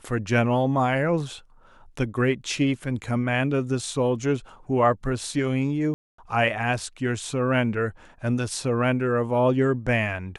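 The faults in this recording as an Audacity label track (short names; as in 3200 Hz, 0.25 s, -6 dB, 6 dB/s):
5.940000	6.180000	gap 0.244 s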